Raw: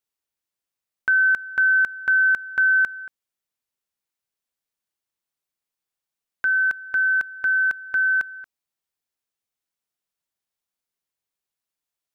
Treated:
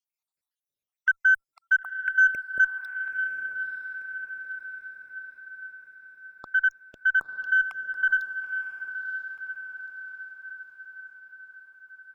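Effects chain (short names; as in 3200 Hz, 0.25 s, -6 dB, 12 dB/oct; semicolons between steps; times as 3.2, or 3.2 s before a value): random spectral dropouts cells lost 71%; on a send: diffused feedback echo 0.959 s, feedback 55%, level -8 dB; on the sum: added harmonics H 4 -37 dB, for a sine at -12.5 dBFS; 6.46–8.11 Doppler distortion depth 0.17 ms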